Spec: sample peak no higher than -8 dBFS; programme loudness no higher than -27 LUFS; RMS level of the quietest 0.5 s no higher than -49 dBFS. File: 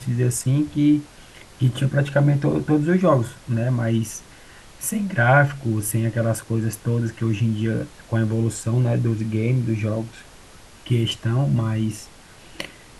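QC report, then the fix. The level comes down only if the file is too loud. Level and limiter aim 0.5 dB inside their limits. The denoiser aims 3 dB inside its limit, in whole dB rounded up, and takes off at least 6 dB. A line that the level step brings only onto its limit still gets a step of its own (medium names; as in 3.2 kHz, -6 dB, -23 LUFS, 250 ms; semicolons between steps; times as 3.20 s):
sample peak -4.0 dBFS: fail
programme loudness -21.5 LUFS: fail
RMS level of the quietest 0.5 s -45 dBFS: fail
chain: trim -6 dB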